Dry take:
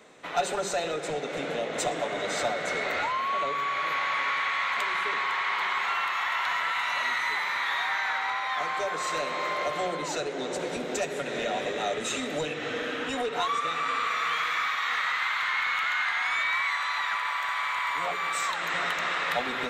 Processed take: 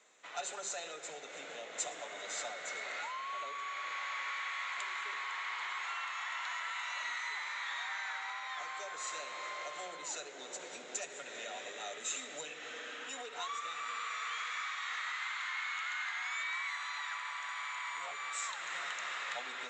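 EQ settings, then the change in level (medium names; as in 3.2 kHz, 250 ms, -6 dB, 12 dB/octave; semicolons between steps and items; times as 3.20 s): high-pass 1.2 kHz 6 dB/octave; resonant low-pass 7.2 kHz, resonance Q 7.6; distance through air 90 m; -9.0 dB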